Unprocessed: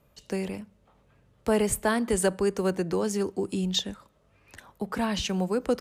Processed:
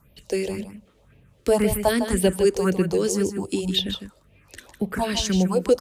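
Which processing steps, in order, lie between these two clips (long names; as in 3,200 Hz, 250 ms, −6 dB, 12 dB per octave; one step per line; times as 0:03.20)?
all-pass phaser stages 4, 1.9 Hz, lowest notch 130–1,300 Hz
single-tap delay 155 ms −9 dB
level +7.5 dB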